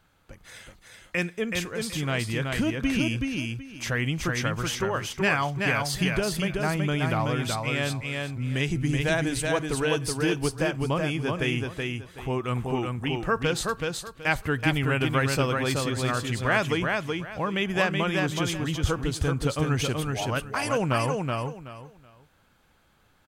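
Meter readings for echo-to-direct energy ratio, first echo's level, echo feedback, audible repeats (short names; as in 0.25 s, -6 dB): -3.5 dB, -3.5 dB, 23%, 3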